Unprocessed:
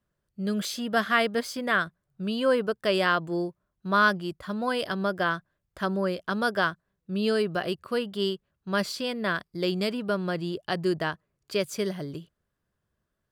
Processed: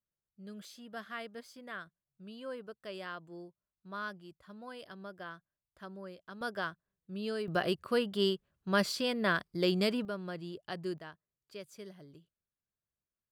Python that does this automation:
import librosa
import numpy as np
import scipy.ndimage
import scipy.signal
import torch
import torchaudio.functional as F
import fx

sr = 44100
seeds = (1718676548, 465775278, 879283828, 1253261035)

y = fx.gain(x, sr, db=fx.steps((0.0, -19.0), (6.41, -11.5), (7.48, -2.0), (10.05, -11.5), (10.98, -19.0)))